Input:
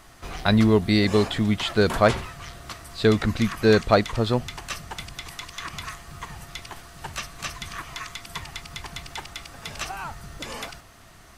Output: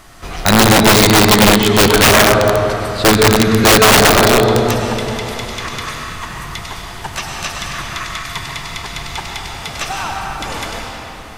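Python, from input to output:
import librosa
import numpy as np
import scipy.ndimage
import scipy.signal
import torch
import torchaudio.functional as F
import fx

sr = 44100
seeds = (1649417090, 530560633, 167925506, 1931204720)

y = fx.dynamic_eq(x, sr, hz=850.0, q=3.7, threshold_db=-40.0, ratio=4.0, max_db=4)
y = fx.rev_freeverb(y, sr, rt60_s=3.3, hf_ratio=0.75, predelay_ms=65, drr_db=-1.5)
y = (np.mod(10.0 ** (10.5 / 20.0) * y + 1.0, 2.0) - 1.0) / 10.0 ** (10.5 / 20.0)
y = F.gain(torch.from_numpy(y), 8.0).numpy()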